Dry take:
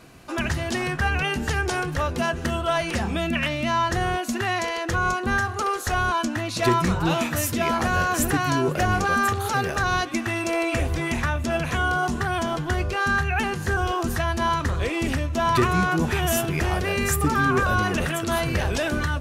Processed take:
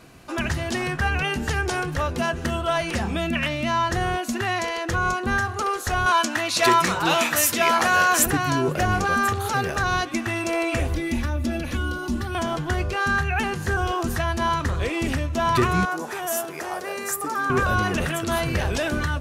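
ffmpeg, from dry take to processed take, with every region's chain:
-filter_complex "[0:a]asettb=1/sr,asplit=3[s0][s1][s2];[s0]atrim=end=6.064[s3];[s1]atrim=start=6.06:end=8.26,asetpts=PTS-STARTPTS,afade=t=in:d=0.004:c=qsin,afade=t=out:st=2.196:d=0.004:c=qsin,highpass=f=830:p=1,acontrast=90[s4];[s2]atrim=start=8.256[s5];[s3][s4]acrossfade=d=0.004:c1=hsin:c2=qsin[s6];[s6][s5]acrossfade=d=0.004:c1=qsin:c2=hsin,asettb=1/sr,asplit=3[s7][s8][s9];[s7]atrim=end=10.944[s10];[s8]atrim=start=10.94:end=12.35,asetpts=PTS-STARTPTS,afade=t=in:d=0.004:c=qsin,afade=t=out:st=1.406:d=0.004:c=qsin,equalizer=f=7400:t=o:w=0.8:g=-7.5,aecho=1:1:3.5:0.77,atrim=end_sample=62181,acrossover=split=480|3000[s11][s12][s13];[s12]acompressor=threshold=0.00562:ratio=2:attack=3.2:release=140:knee=2.83:detection=peak[s14];[s11][s14][s13]amix=inputs=3:normalize=0[s15];[s9]atrim=start=12.346[s16];[s10][s15]acrossfade=d=0.004:c1=hsin:c2=qsin[s17];[s17][s16]acrossfade=d=0.004:c1=qsin:c2=hsin,asettb=1/sr,asplit=3[s18][s19][s20];[s18]atrim=end=15.854[s21];[s19]atrim=start=15.85:end=17.5,asetpts=PTS-STARTPTS,afade=t=in:d=0.004:c=qsin,afade=t=out:st=1.646:d=0.004:c=qsin,highpass=490,equalizer=f=2800:w=1:g=-9.5[s22];[s20]atrim=start=17.496[s23];[s21][s22]acrossfade=d=0.004:c1=hsin:c2=qsin[s24];[s24][s23]acrossfade=d=0.004:c1=qsin:c2=hsin"

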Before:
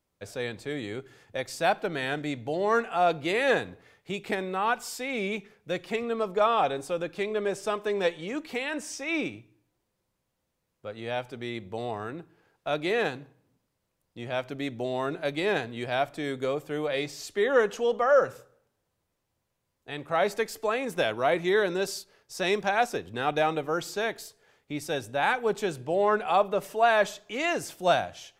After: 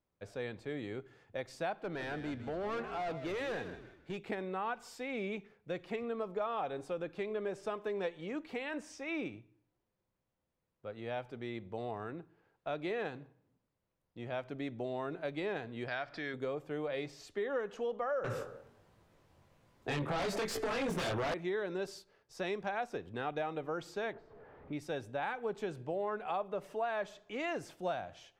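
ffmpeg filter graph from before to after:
-filter_complex "[0:a]asettb=1/sr,asplit=3[s0][s1][s2];[s0]atrim=end=1.824[s3];[s1]atrim=start=1.82:end=4.21,asetpts=PTS-STARTPTS,afade=t=in:d=0.004:c=qsin,afade=t=out:st=2.386:d=0.004:c=qsin,volume=25.1,asoftclip=hard,volume=0.0398,asplit=4[s4][s5][s6][s7];[s5]adelay=156,afreqshift=-53,volume=0.299[s8];[s6]adelay=312,afreqshift=-106,volume=0.0955[s9];[s7]adelay=468,afreqshift=-159,volume=0.0305[s10];[s4][s8][s9][s10]amix=inputs=4:normalize=0,atrim=end_sample=105399[s11];[s2]atrim=start=4.206[s12];[s3][s11]acrossfade=d=0.004:c1=hsin:c2=qsin[s13];[s13][s12]acrossfade=d=0.004:c1=qsin:c2=hsin,asettb=1/sr,asplit=3[s14][s15][s16];[s14]atrim=end=15.884[s17];[s15]atrim=start=15.88:end=16.34,asetpts=PTS-STARTPTS,afade=t=in:d=0.004:c=qsin,afade=t=out:st=0.456:d=0.004:c=qsin,acompressor=threshold=0.00891:ratio=1.5:attack=3.2:release=140:knee=1:detection=peak,lowpass=f=4900:t=q:w=7.5,equalizer=f=1700:w=1.3:g=11.5[s18];[s16]atrim=start=16.336[s19];[s17][s18]acrossfade=d=0.004:c1=hsin:c2=qsin[s20];[s20][s19]acrossfade=d=0.004:c1=qsin:c2=hsin,asettb=1/sr,asplit=3[s21][s22][s23];[s21]atrim=end=18.244[s24];[s22]atrim=start=18.24:end=21.34,asetpts=PTS-STARTPTS,afade=t=in:d=0.004:c=qsin,afade=t=out:st=3.096:d=0.004:c=qsin,flanger=delay=18:depth=4.3:speed=1.3,acrossover=split=170|3000[s25][s26][s27];[s26]acompressor=threshold=0.00891:ratio=3:attack=3.2:release=140:knee=2.83:detection=peak[s28];[s25][s28][s27]amix=inputs=3:normalize=0,aeval=exprs='0.119*sin(PI/2*8.91*val(0)/0.119)':c=same[s29];[s23]atrim=start=21.336[s30];[s24][s29]acrossfade=d=0.004:c1=hsin:c2=qsin[s31];[s31][s30]acrossfade=d=0.004:c1=qsin:c2=hsin,asettb=1/sr,asplit=3[s32][s33][s34];[s32]atrim=end=24.134[s35];[s33]atrim=start=24.13:end=24.73,asetpts=PTS-STARTPTS,afade=t=in:d=0.004:c=qsin,afade=t=out:st=0.596:d=0.004:c=qsin,aeval=exprs='val(0)+0.5*0.00891*sgn(val(0))':c=same,lowpass=1100[s36];[s34]atrim=start=24.726[s37];[s35][s36]acrossfade=d=0.004:c1=hsin:c2=qsin[s38];[s38][s37]acrossfade=d=0.004:c1=qsin:c2=hsin,lowpass=f=2100:p=1,acompressor=threshold=0.0398:ratio=4,volume=0.531"

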